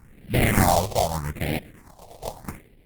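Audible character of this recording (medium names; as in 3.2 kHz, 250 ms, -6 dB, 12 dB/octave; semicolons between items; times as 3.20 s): random-step tremolo; aliases and images of a low sample rate 1.4 kHz, jitter 20%; phasing stages 4, 0.81 Hz, lowest notch 260–1100 Hz; Opus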